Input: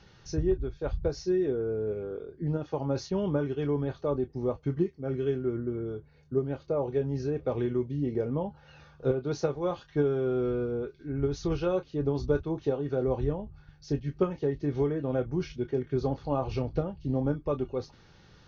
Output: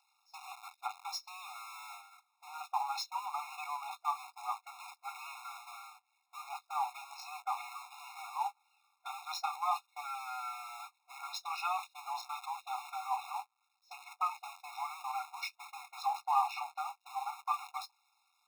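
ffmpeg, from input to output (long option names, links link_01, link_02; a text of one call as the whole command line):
ffmpeg -i in.wav -af "aeval=exprs='val(0)+0.5*0.00944*sgn(val(0))':channel_layout=same,agate=range=-30dB:threshold=-32dB:ratio=16:detection=peak,afftfilt=real='re*eq(mod(floor(b*sr/1024/710),2),1)':imag='im*eq(mod(floor(b*sr/1024/710),2),1)':win_size=1024:overlap=0.75,volume=6.5dB" out.wav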